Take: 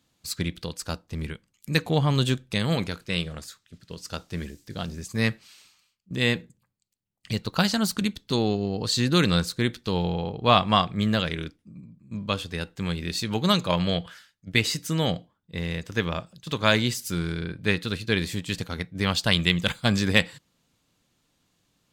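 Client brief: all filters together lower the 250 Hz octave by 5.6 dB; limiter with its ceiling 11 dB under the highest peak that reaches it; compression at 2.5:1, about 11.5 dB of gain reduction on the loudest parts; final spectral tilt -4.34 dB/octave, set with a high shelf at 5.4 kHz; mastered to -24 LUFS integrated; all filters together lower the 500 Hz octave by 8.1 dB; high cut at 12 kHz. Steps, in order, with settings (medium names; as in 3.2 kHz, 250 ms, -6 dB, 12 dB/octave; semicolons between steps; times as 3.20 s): low-pass 12 kHz; peaking EQ 250 Hz -6.5 dB; peaking EQ 500 Hz -8.5 dB; treble shelf 5.4 kHz -3.5 dB; compression 2.5:1, threshold -34 dBFS; trim +14.5 dB; peak limiter -10.5 dBFS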